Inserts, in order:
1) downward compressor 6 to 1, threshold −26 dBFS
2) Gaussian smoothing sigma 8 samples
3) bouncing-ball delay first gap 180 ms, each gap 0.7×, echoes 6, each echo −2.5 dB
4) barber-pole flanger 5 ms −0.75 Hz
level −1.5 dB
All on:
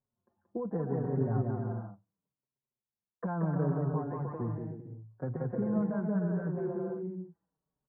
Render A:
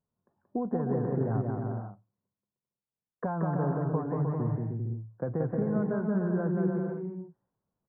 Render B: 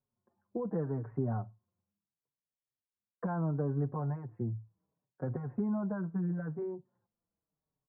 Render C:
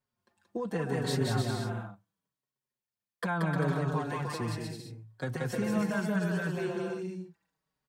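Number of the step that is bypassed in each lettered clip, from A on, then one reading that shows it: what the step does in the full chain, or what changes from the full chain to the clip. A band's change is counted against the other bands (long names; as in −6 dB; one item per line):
4, change in momentary loudness spread −2 LU
3, change in momentary loudness spread −3 LU
2, 1 kHz band +4.5 dB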